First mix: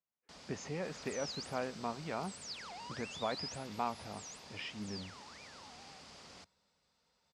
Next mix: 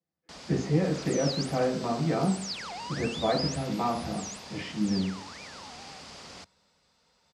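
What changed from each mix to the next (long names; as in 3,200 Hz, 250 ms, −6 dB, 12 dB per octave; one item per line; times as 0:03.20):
first sound +9.0 dB
second sound +9.0 dB
reverb: on, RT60 0.60 s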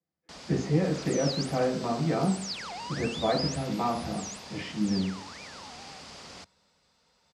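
nothing changed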